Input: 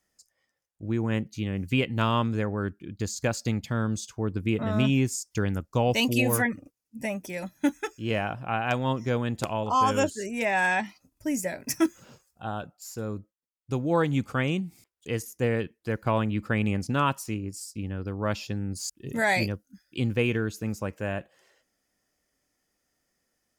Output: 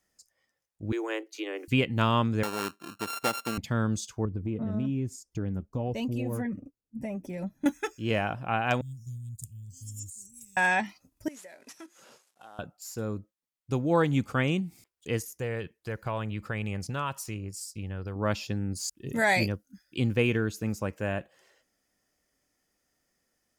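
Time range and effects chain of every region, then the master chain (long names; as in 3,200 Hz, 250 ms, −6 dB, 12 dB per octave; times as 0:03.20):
0:00.92–0:01.68: Butterworth high-pass 310 Hz 96 dB per octave + multiband upward and downward compressor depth 70%
0:02.43–0:03.58: samples sorted by size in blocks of 32 samples + high-pass filter 280 Hz
0:04.25–0:07.66: tilt shelving filter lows +9 dB, about 780 Hz + flanger 1.1 Hz, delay 0.7 ms, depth 4.7 ms, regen +59% + downward compressor 2.5 to 1, threshold −31 dBFS
0:08.81–0:10.57: elliptic band-stop filter 120–7,900 Hz, stop band 80 dB + bass and treble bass −6 dB, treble +2 dB
0:11.28–0:12.59: variable-slope delta modulation 64 kbit/s + high-pass filter 400 Hz + downward compressor 3 to 1, threshold −50 dBFS
0:15.20–0:18.16: parametric band 260 Hz −9 dB 0.7 octaves + downward compressor 2 to 1, threshold −32 dBFS
whole clip: no processing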